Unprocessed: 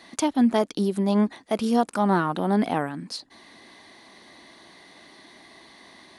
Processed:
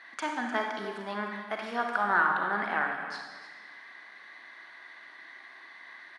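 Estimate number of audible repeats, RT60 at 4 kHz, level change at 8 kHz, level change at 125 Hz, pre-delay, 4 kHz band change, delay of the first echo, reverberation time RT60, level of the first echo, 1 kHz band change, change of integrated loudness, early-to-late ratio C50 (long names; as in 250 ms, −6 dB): 1, 1.3 s, below −10 dB, −19.0 dB, 31 ms, −7.0 dB, 303 ms, 1.4 s, −13.0 dB, −2.0 dB, −6.5 dB, 2.5 dB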